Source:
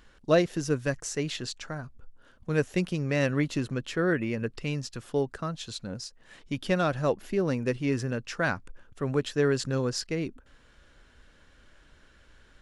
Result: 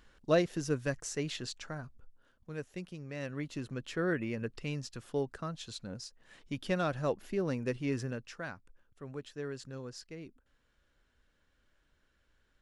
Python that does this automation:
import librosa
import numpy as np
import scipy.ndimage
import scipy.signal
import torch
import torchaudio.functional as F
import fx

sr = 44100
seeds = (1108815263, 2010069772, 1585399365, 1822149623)

y = fx.gain(x, sr, db=fx.line((1.85, -5.0), (2.56, -15.0), (3.13, -15.0), (3.95, -6.0), (8.06, -6.0), (8.52, -15.5)))